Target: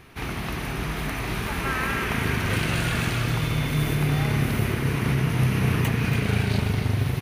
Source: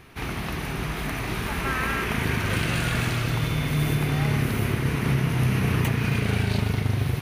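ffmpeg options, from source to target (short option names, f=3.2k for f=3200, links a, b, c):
-filter_complex "[0:a]asettb=1/sr,asplit=3[a][b][c];[a]atrim=end=3.404[d];[b]atrim=start=3.4:end=3.9,asetpts=PTS-STARTPTS,afade=t=in:d=0.004:c=qsin,afade=t=out:st=0.496:d=0.004:c=qsin,aeval=exprs='0.178*(cos(1*acos(clip(val(0)/0.178,-1,1)))-cos(1*PI/2))+0.00316*(cos(6*acos(clip(val(0)/0.178,-1,1)))-cos(6*PI/2))+0.00112*(cos(7*acos(clip(val(0)/0.178,-1,1)))-cos(7*PI/2))':c=same[e];[c]atrim=start=3.896[f];[d][e]acrossfade=d=0.004:c1=hsin:c2=qsin[g];[g][f]acrossfade=d=0.004:c1=qsin:c2=hsin,aecho=1:1:283:0.316"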